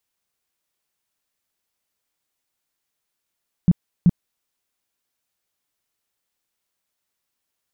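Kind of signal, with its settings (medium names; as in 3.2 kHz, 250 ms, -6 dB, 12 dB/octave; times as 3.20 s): tone bursts 174 Hz, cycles 6, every 0.38 s, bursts 2, -9 dBFS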